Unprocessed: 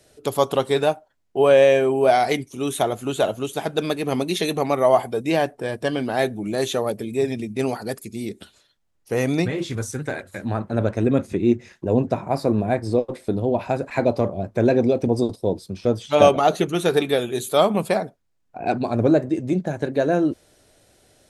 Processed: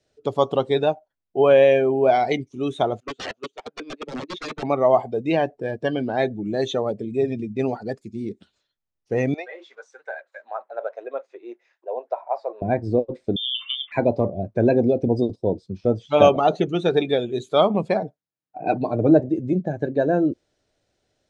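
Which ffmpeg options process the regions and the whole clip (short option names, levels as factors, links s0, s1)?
-filter_complex "[0:a]asettb=1/sr,asplit=3[s0][s1][s2];[s0]atrim=end=3.004[s3];[s1]atrim=start=3:end=4.63,asetpts=PTS-STARTPTS,afade=t=in:d=0.004:c=qsin,afade=t=out:st=1.626:d=0.004:c=qsin,agate=range=0.141:threshold=0.0562:ratio=16:release=100:detection=peak,highpass=280,lowpass=6200,aeval=exprs='(mod(12.6*val(0)+1,2)-1)/12.6':c=same[s4];[s2]atrim=start=4.626[s5];[s3][s4]acrossfade=d=0.004:c1=hsin:c2=qsin[s6];[s6][s5]acrossfade=d=0.004:c1=qsin:c2=hsin,asettb=1/sr,asplit=3[s7][s8][s9];[s7]atrim=end=9.344[s10];[s8]atrim=start=9.34:end=12.62,asetpts=PTS-STARTPTS,afade=t=in:d=0.004:c=qsin,afade=t=out:st=3.276:d=0.004:c=qsin,highpass=f=600:w=0.5412,highpass=f=600:w=1.3066,aemphasis=mode=reproduction:type=75fm[s11];[s9]atrim=start=12.616[s12];[s10][s11]acrossfade=d=0.004:c1=hsin:c2=qsin[s13];[s13][s12]acrossfade=d=0.004:c1=qsin:c2=hsin,asettb=1/sr,asplit=3[s14][s15][s16];[s14]atrim=end=13.364[s17];[s15]atrim=start=13.36:end=13.92,asetpts=PTS-STARTPTS,afade=t=in:d=0.004:c=qsin,afade=t=out:st=0.556:d=0.004:c=qsin,acompressor=threshold=0.0631:ratio=2.5:attack=3.2:release=140:knee=1:detection=peak,aeval=exprs='val(0)*gte(abs(val(0)),0.00376)':c=same,lowpass=f=3100:t=q:w=0.5098,lowpass=f=3100:t=q:w=0.6013,lowpass=f=3100:t=q:w=0.9,lowpass=f=3100:t=q:w=2.563,afreqshift=-3700[s18];[s16]atrim=start=13.916[s19];[s17][s18]acrossfade=d=0.004:c1=hsin:c2=qsin[s20];[s20][s19]acrossfade=d=0.004:c1=qsin:c2=hsin,asettb=1/sr,asplit=3[s21][s22][s23];[s21]atrim=end=18.024[s24];[s22]atrim=start=18.02:end=19.2,asetpts=PTS-STARTPTS,afade=t=in:d=0.004:c=qsin,afade=t=out:st=1.176:d=0.004:c=qsin,highpass=110,aecho=1:1:6.5:0.47,atrim=end_sample=52038[s25];[s23]atrim=start=19.196[s26];[s24][s25]acrossfade=d=0.004:c1=hsin:c2=qsin[s27];[s27][s26]acrossfade=d=0.004:c1=qsin:c2=hsin,lowpass=f=6800:w=0.5412,lowpass=f=6800:w=1.3066,afftdn=nr=14:nf=-29,adynamicequalizer=threshold=0.0158:dfrequency=1300:dqfactor=1.3:tfrequency=1300:tqfactor=1.3:attack=5:release=100:ratio=0.375:range=2.5:mode=cutabove:tftype=bell"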